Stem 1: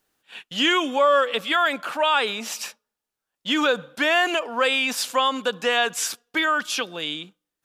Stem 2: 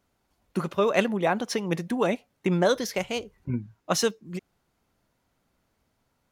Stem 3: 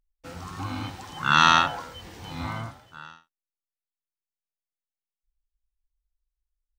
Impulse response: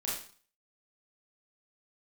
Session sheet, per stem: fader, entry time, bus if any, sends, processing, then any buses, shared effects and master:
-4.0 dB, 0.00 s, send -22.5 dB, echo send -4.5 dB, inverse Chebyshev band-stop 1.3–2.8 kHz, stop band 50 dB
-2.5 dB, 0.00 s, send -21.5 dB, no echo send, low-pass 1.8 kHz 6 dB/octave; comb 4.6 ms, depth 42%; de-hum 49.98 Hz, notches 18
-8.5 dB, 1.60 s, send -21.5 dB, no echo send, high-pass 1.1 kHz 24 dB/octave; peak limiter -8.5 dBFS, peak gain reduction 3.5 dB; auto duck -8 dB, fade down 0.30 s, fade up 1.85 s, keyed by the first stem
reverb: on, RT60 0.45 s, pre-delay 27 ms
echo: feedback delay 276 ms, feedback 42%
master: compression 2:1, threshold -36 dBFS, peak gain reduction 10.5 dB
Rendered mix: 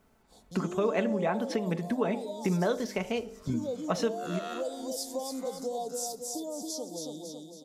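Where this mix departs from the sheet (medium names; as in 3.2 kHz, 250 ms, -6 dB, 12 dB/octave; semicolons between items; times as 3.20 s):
stem 2 -2.5 dB -> +7.5 dB; stem 3: entry 1.60 s -> 2.95 s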